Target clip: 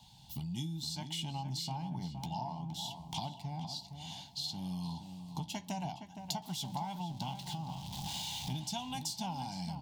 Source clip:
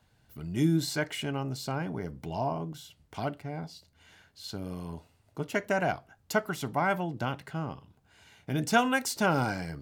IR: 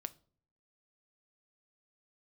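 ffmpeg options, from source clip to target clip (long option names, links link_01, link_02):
-filter_complex "[0:a]asettb=1/sr,asplit=3[link_01][link_02][link_03];[link_01]atrim=end=6.424[link_04];[link_02]atrim=start=6.42:end=8.57,asetpts=PTS-STARTPTS,afade=type=in:duration=0.004:curve=qsin,afade=type=out:start_time=2.146:duration=0.004:curve=qsin,aeval=exprs='val(0)+0.5*0.00794*sgn(val(0))':channel_layout=same[link_05];[link_03]atrim=start=8.566[link_06];[link_04][link_05]acrossfade=duration=0.004:curve1=hsin:curve2=qsin[link_07];[link_07][link_06]acrossfade=duration=0.004:curve1=qsin:curve2=hsin,firequalizer=gain_entry='entry(110,0);entry(160,9);entry(450,-19);entry(860,13);entry(1300,-19);entry(3300,14);entry(10000,5)':delay=0.05:min_phase=1,acompressor=threshold=-40dB:ratio=10,asplit=2[link_08][link_09];[link_09]adelay=16,volume=-13dB[link_10];[link_08][link_10]amix=inputs=2:normalize=0,asplit=2[link_11][link_12];[link_12]adelay=466,lowpass=frequency=1900:poles=1,volume=-8dB,asplit=2[link_13][link_14];[link_14]adelay=466,lowpass=frequency=1900:poles=1,volume=0.54,asplit=2[link_15][link_16];[link_16]adelay=466,lowpass=frequency=1900:poles=1,volume=0.54,asplit=2[link_17][link_18];[link_18]adelay=466,lowpass=frequency=1900:poles=1,volume=0.54,asplit=2[link_19][link_20];[link_20]adelay=466,lowpass=frequency=1900:poles=1,volume=0.54,asplit=2[link_21][link_22];[link_22]adelay=466,lowpass=frequency=1900:poles=1,volume=0.54[link_23];[link_11][link_13][link_15][link_17][link_19][link_21][link_23]amix=inputs=7:normalize=0,volume=3dB"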